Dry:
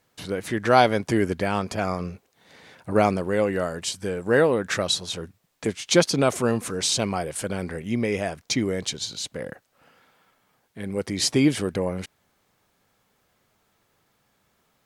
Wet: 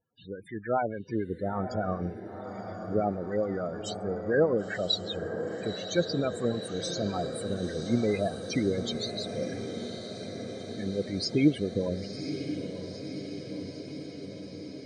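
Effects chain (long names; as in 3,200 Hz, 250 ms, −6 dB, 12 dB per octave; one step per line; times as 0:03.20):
automatic gain control gain up to 10 dB
two-band tremolo in antiphase 6.8 Hz, depth 50%, crossover 1,200 Hz
spectral peaks only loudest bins 16
feedback delay with all-pass diffusion 988 ms, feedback 72%, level −9 dB
level −8.5 dB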